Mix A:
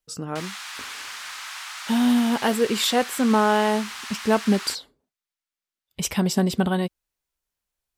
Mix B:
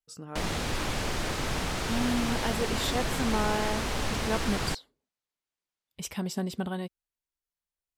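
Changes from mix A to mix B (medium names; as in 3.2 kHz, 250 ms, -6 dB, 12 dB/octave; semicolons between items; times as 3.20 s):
speech -10.5 dB; background: remove inverse Chebyshev high-pass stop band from 410 Hz, stop band 50 dB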